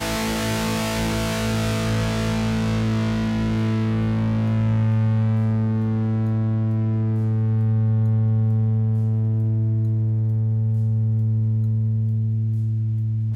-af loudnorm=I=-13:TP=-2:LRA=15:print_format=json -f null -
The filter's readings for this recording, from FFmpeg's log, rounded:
"input_i" : "-21.9",
"input_tp" : "-13.0",
"input_lra" : "1.4",
"input_thresh" : "-31.9",